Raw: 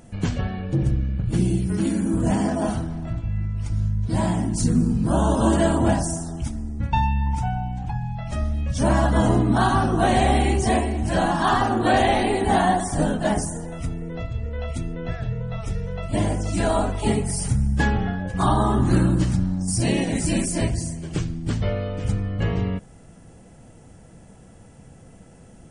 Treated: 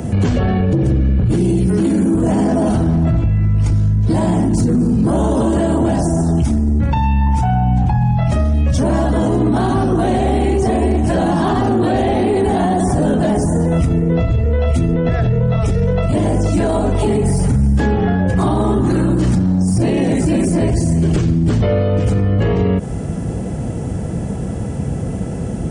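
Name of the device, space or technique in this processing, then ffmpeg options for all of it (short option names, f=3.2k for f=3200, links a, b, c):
mastering chain: -filter_complex "[0:a]highpass=f=45:w=0.5412,highpass=f=45:w=1.3066,equalizer=f=410:t=o:w=0.29:g=3,acrossover=split=280|630|2200[a][b][c][d];[a]acompressor=threshold=-31dB:ratio=4[e];[b]acompressor=threshold=-26dB:ratio=4[f];[c]acompressor=threshold=-33dB:ratio=4[g];[d]acompressor=threshold=-38dB:ratio=4[h];[e][f][g][h]amix=inputs=4:normalize=0,acompressor=threshold=-29dB:ratio=2.5,asoftclip=type=tanh:threshold=-23dB,tiltshelf=f=670:g=5.5,alimiter=level_in=29dB:limit=-1dB:release=50:level=0:latency=1,volume=-7.5dB"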